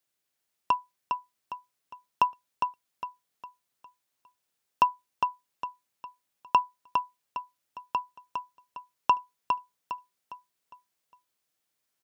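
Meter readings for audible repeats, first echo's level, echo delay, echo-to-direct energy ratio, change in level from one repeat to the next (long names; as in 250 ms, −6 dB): 4, −5.0 dB, 407 ms, −4.5 dB, −8.5 dB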